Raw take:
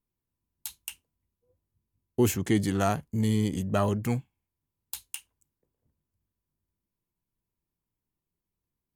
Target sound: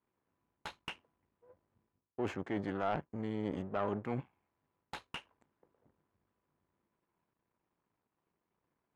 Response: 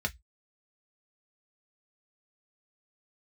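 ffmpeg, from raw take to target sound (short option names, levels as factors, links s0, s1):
-filter_complex "[0:a]aeval=exprs='if(lt(val(0),0),0.251*val(0),val(0))':c=same,areverse,acompressor=threshold=0.0112:ratio=12,areverse,bandpass=f=1600:t=q:w=0.68:csg=0,tiltshelf=f=1500:g=6.5,asplit=2[s0][s1];[s1]aeval=exprs='0.0282*sin(PI/2*2.24*val(0)/0.0282)':c=same,volume=0.944[s2];[s0][s2]amix=inputs=2:normalize=0,aemphasis=mode=reproduction:type=75fm,volume=1.26"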